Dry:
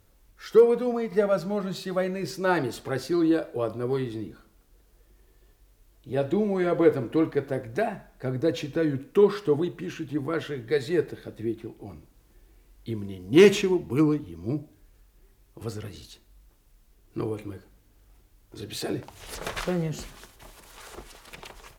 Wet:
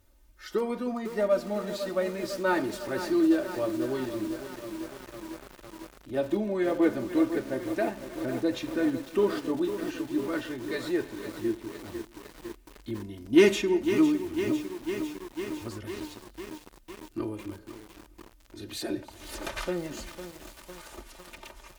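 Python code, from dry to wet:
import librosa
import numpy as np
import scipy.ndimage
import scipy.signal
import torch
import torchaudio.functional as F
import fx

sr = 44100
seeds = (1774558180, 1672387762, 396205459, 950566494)

y = x + 0.75 * np.pad(x, (int(3.3 * sr / 1000.0), 0))[:len(x)]
y = fx.echo_feedback(y, sr, ms=310, feedback_pct=38, wet_db=-21.0)
y = fx.echo_crushed(y, sr, ms=503, feedback_pct=80, bits=6, wet_db=-9.5)
y = F.gain(torch.from_numpy(y), -4.5).numpy()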